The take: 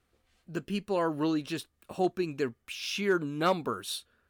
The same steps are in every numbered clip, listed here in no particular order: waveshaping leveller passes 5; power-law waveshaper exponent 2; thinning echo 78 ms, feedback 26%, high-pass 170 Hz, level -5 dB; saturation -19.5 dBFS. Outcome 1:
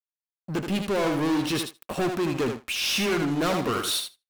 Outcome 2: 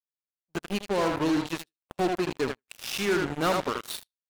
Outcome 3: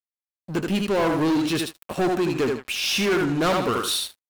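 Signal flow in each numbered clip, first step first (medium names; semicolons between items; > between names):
waveshaping leveller > thinning echo > saturation > power-law waveshaper; thinning echo > power-law waveshaper > waveshaping leveller > saturation; saturation > thinning echo > waveshaping leveller > power-law waveshaper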